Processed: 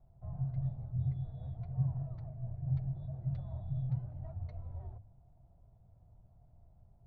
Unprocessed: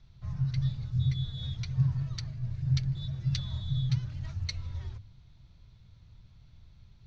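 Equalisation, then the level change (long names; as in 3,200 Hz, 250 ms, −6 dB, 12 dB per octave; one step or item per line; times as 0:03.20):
low-pass with resonance 700 Hz, resonance Q 6.5
−6.5 dB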